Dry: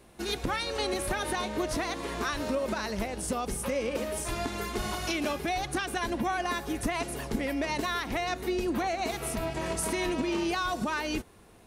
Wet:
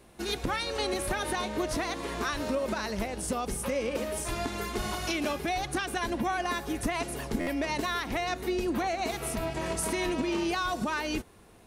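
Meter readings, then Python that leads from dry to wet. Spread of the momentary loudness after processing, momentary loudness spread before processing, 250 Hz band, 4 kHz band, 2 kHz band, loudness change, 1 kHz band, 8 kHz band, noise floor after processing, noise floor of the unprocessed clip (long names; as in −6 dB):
3 LU, 3 LU, 0.0 dB, 0.0 dB, 0.0 dB, 0.0 dB, 0.0 dB, 0.0 dB, −55 dBFS, −55 dBFS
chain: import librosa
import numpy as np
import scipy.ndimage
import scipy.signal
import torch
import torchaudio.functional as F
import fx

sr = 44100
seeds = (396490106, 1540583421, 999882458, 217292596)

y = fx.buffer_glitch(x, sr, at_s=(7.4,), block=512, repeats=5)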